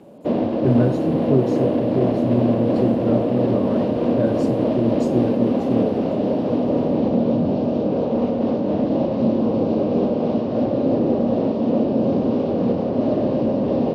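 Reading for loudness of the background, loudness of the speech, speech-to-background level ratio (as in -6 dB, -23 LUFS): -20.5 LUFS, -24.0 LUFS, -3.5 dB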